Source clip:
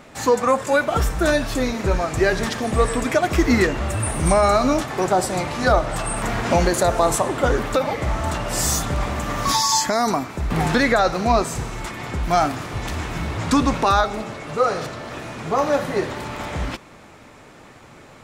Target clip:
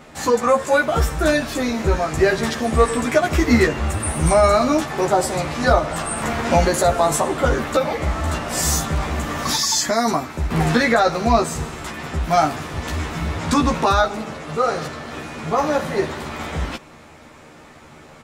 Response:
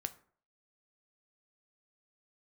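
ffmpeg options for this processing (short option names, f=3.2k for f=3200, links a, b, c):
-filter_complex "[0:a]asplit=2[a][b];[b]adelay=13,volume=-2dB[c];[a][c]amix=inputs=2:normalize=0,volume=-1dB"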